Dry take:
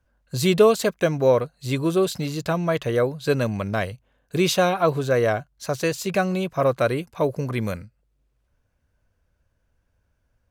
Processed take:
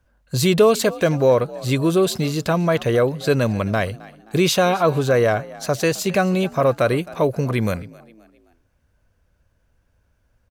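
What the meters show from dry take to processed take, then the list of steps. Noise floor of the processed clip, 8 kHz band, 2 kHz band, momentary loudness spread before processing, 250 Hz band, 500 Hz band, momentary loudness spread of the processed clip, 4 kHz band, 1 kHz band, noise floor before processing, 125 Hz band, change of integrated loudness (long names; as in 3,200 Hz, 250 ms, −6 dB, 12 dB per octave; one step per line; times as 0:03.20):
−65 dBFS, +4.5 dB, +3.5 dB, 9 LU, +4.0 dB, +3.0 dB, 8 LU, +4.0 dB, +3.0 dB, −71 dBFS, +4.5 dB, +3.0 dB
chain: echo with shifted repeats 263 ms, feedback 42%, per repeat +54 Hz, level −22 dB
in parallel at +1.5 dB: brickwall limiter −16.5 dBFS, peak gain reduction 11.5 dB
on the sum: level −1.5 dB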